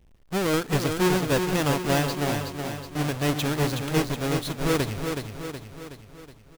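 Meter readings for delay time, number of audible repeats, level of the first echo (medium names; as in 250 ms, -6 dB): 371 ms, 6, -6.0 dB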